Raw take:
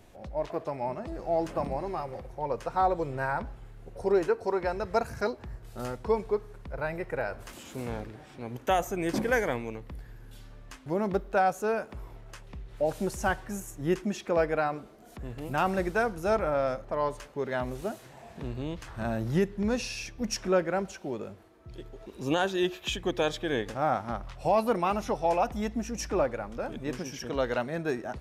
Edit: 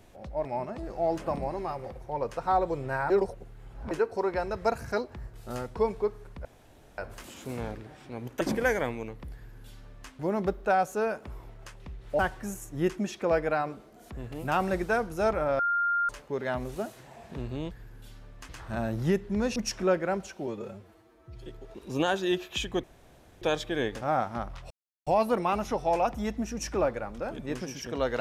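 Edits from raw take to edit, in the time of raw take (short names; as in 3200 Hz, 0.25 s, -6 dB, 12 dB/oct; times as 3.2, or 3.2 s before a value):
0.45–0.74 cut
3.39–4.2 reverse
6.74–7.27 room tone
8.7–9.08 cut
10–10.78 copy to 18.77
12.86–13.25 cut
16.65–17.15 bleep 1400 Hz -23.5 dBFS
19.84–20.21 cut
21.12–21.79 stretch 1.5×
23.15 insert room tone 0.58 s
24.44 insert silence 0.36 s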